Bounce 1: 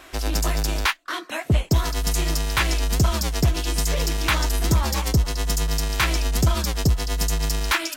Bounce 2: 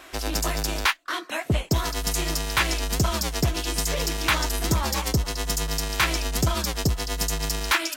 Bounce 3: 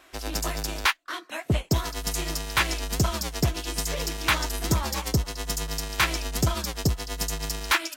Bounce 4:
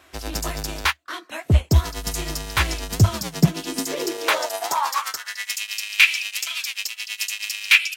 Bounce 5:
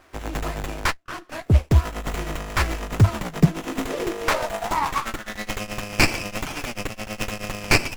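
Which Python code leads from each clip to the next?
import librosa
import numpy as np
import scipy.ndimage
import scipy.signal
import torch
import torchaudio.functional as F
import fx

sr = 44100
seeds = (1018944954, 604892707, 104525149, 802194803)

y1 = fx.low_shelf(x, sr, hz=140.0, db=-7.0)
y2 = fx.upward_expand(y1, sr, threshold_db=-36.0, expansion=1.5)
y3 = fx.filter_sweep_highpass(y2, sr, from_hz=74.0, to_hz=2500.0, start_s=2.81, end_s=5.59, q=5.3)
y3 = y3 * 10.0 ** (1.5 / 20.0)
y4 = fx.running_max(y3, sr, window=9)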